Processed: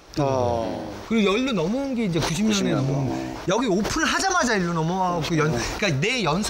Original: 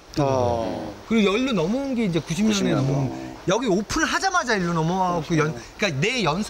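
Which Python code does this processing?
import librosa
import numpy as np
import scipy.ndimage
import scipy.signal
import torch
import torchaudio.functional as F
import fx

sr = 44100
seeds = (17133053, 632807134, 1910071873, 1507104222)

y = fx.sustainer(x, sr, db_per_s=31.0)
y = y * 10.0 ** (-1.5 / 20.0)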